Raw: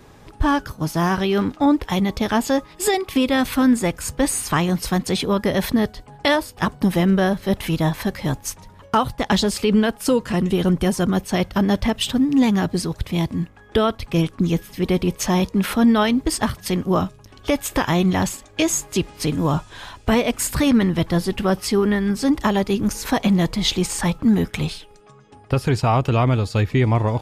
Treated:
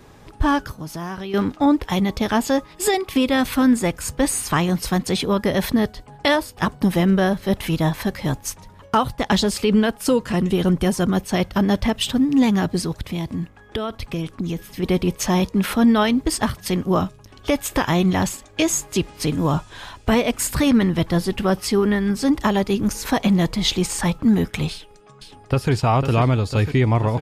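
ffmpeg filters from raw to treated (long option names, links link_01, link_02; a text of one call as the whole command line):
ffmpeg -i in.wav -filter_complex "[0:a]asettb=1/sr,asplit=3[link_01][link_02][link_03];[link_01]atrim=end=0.714[link_04];[link_02]atrim=start=0.71:end=1.34,asetpts=PTS-STARTPTS,afade=type=in:duration=0.004:curve=qsin,afade=type=out:start_time=0.626:duration=0.004:curve=qsin,acompressor=threshold=-31dB:ratio=2.5:attack=3.2:release=140:knee=1:detection=peak[link_05];[link_03]atrim=start=1.336[link_06];[link_04][link_05]acrossfade=duration=0.004:curve1=hsin:curve2=qsin[link_07];[link_07][link_06]acrossfade=duration=0.004:curve1=qsin:curve2=hsin,asplit=3[link_08][link_09][link_10];[link_08]afade=type=out:start_time=12.92:duration=0.02[link_11];[link_09]acompressor=threshold=-21dB:ratio=6:attack=3.2:release=140:knee=1:detection=peak,afade=type=in:start_time=12.92:duration=0.02,afade=type=out:start_time=14.82:duration=0.02[link_12];[link_10]afade=type=in:start_time=14.82:duration=0.02[link_13];[link_11][link_12][link_13]amix=inputs=3:normalize=0,asplit=2[link_14][link_15];[link_15]afade=type=in:start_time=24.71:duration=0.01,afade=type=out:start_time=25.71:duration=0.01,aecho=0:1:500|1000|1500|2000|2500|3000|3500|4000|4500|5000|5500:0.421697|0.295188|0.206631|0.144642|0.101249|0.0708745|0.0496122|0.0347285|0.02431|0.017017|0.0119119[link_16];[link_14][link_16]amix=inputs=2:normalize=0" out.wav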